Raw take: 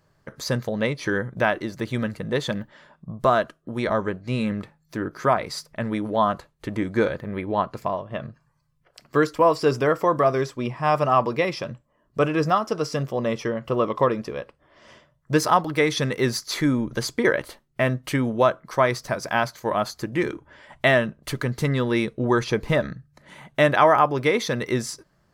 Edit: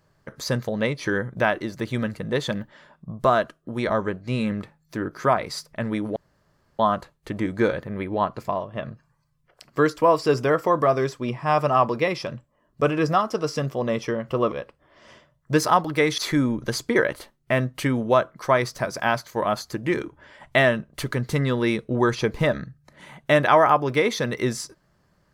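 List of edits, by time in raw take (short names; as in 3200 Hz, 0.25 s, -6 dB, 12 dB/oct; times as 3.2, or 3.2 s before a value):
6.16 insert room tone 0.63 s
13.89–14.32 cut
15.98–16.47 cut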